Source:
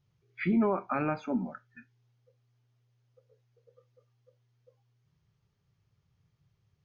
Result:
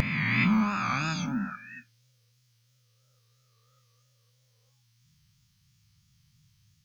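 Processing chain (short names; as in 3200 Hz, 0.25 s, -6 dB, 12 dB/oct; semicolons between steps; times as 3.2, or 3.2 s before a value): spectral swells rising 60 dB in 2.29 s; EQ curve 210 Hz 0 dB, 430 Hz -28 dB, 970 Hz -6 dB, 5200 Hz +12 dB; vibrato 3 Hz 82 cents; de-hum 94.57 Hz, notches 13; gain +3 dB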